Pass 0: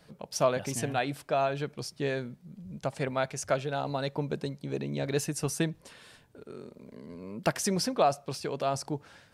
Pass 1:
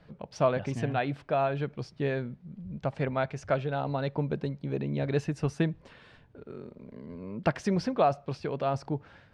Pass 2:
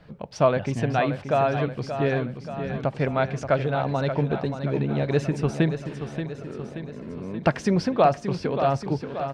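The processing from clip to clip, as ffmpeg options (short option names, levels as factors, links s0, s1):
-af "lowpass=2900,lowshelf=f=130:g=8.5"
-af "aecho=1:1:579|1158|1737|2316|2895|3474|4053:0.355|0.202|0.115|0.0657|0.0375|0.0213|0.0122,volume=1.88"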